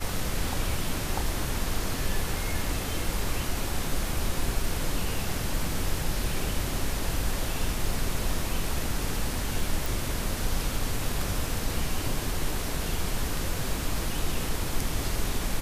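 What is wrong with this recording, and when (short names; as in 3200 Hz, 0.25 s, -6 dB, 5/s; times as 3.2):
9.86 pop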